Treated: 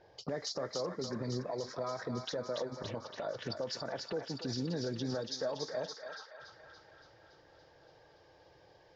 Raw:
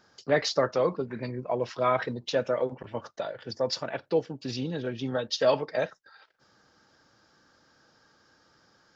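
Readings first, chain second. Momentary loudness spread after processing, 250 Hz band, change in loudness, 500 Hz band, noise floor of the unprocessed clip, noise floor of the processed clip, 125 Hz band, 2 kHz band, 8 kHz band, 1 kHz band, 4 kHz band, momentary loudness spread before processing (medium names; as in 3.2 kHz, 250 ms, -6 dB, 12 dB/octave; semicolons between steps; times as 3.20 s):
10 LU, -5.5 dB, -9.0 dB, -10.5 dB, -65 dBFS, -63 dBFS, -4.5 dB, -11.0 dB, no reading, -11.5 dB, -6.0 dB, 11 LU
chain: touch-sensitive phaser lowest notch 210 Hz, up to 2.8 kHz, full sweep at -30.5 dBFS; compression 6:1, threshold -40 dBFS, peak gain reduction 20 dB; peak limiter -35.5 dBFS, peak gain reduction 8 dB; thinning echo 284 ms, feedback 78%, high-pass 1 kHz, level -4 dB; level-controlled noise filter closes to 1.7 kHz, open at -42 dBFS; trim +7.5 dB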